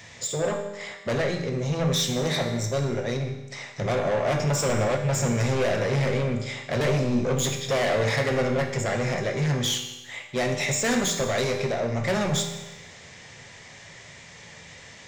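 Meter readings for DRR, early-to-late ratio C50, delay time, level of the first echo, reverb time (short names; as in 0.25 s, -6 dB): 3.5 dB, 6.5 dB, none, none, 1.1 s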